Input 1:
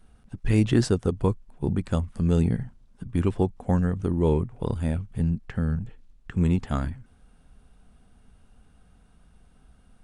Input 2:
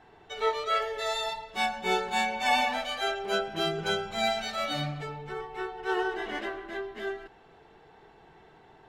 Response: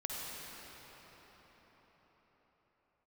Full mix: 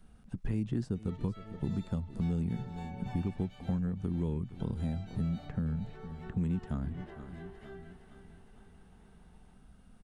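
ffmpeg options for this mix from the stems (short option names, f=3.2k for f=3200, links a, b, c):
-filter_complex "[0:a]equalizer=f=190:t=o:w=0.77:g=6,volume=-3dB,asplit=2[a][b];[b]volume=-20.5dB[c];[1:a]adelay=650,volume=-14.5dB,asplit=3[d][e][f];[d]atrim=end=3.78,asetpts=PTS-STARTPTS,afade=t=out:st=3.776:d=0.004:c=hsin[g];[e]atrim=start=3.78:end=4.6,asetpts=PTS-STARTPTS,volume=0[h];[f]atrim=start=4.6,asetpts=PTS-STARTPTS,afade=t=in:d=0.004:c=hsin[i];[g][h][i]concat=n=3:v=0:a=1,asplit=2[j][k];[k]volume=-13.5dB[l];[c][l]amix=inputs=2:normalize=0,aecho=0:1:459|918|1377|1836|2295|2754|3213:1|0.49|0.24|0.118|0.0576|0.0282|0.0138[m];[a][j][m]amix=inputs=3:normalize=0,acrossover=split=310|1200[n][o][p];[n]acompressor=threshold=-32dB:ratio=4[q];[o]acompressor=threshold=-47dB:ratio=4[r];[p]acompressor=threshold=-60dB:ratio=4[s];[q][r][s]amix=inputs=3:normalize=0"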